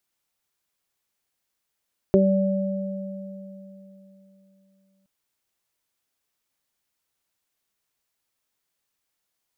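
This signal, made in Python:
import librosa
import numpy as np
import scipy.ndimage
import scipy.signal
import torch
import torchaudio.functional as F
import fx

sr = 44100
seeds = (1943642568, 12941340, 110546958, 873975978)

y = fx.additive(sr, length_s=2.92, hz=193.0, level_db=-16, upper_db=(4.5, -2.5), decay_s=3.55, upper_decays_s=(0.24, 3.14))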